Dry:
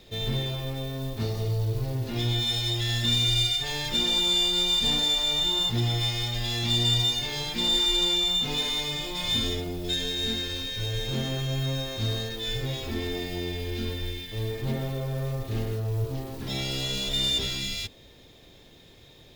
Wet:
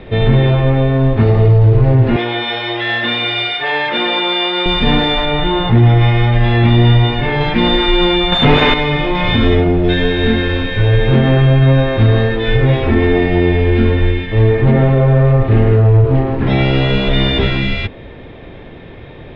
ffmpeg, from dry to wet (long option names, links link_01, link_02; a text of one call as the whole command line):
ffmpeg -i in.wav -filter_complex "[0:a]asettb=1/sr,asplit=3[link_01][link_02][link_03];[link_01]atrim=end=2.164[link_04];[link_02]atrim=start=2.16:end=4.66,asetpts=PTS-STARTPTS,afade=type=in:duration=0.004:curve=qsin,afade=type=out:start_time=2.496:duration=0.004:curve=qsin,highpass=450,lowpass=6100[link_05];[link_03]atrim=start=4.656[link_06];[link_04][link_05]acrossfade=duration=0.004:curve1=hsin:curve2=qsin[link_07];[link_07][link_06]acrossfade=duration=0.004:curve1=qsin:curve2=hsin,asettb=1/sr,asplit=3[link_08][link_09][link_10];[link_08]atrim=end=5.254[link_11];[link_09]atrim=start=5.25:end=7.41,asetpts=PTS-STARTPTS,afade=type=in:duration=0.004:curve=qsin,afade=type=out:start_time=2.156:duration=0.004:curve=qsin,lowpass=frequency=2700:poles=1[link_12];[link_10]atrim=start=7.406[link_13];[link_11][link_12]acrossfade=duration=0.004:curve1=hsin:curve2=qsin[link_14];[link_14][link_13]acrossfade=duration=0.004:curve1=qsin:curve2=hsin,asettb=1/sr,asplit=3[link_15][link_16][link_17];[link_15]atrim=end=8.324[link_18];[link_16]atrim=start=8.32:end=8.74,asetpts=PTS-STARTPTS,afade=type=in:duration=0.004:curve=qsin,afade=type=out:start_time=0.416:duration=0.004:curve=qsin,aeval=exprs='0.141*sin(PI/2*2.51*val(0)/0.141)':channel_layout=same[link_19];[link_17]atrim=start=8.736[link_20];[link_18][link_19]acrossfade=duration=0.004:curve1=hsin:curve2=qsin[link_21];[link_21][link_20]acrossfade=duration=0.004:curve1=qsin:curve2=hsin,lowpass=frequency=2300:width=0.5412,lowpass=frequency=2300:width=1.3066,alimiter=level_in=21.5dB:limit=-1dB:release=50:level=0:latency=1,volume=-1dB" out.wav